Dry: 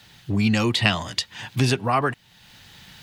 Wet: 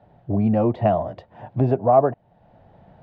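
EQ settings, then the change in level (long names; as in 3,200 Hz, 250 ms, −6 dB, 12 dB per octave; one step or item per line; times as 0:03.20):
low-pass with resonance 650 Hz, resonance Q 4.9
0.0 dB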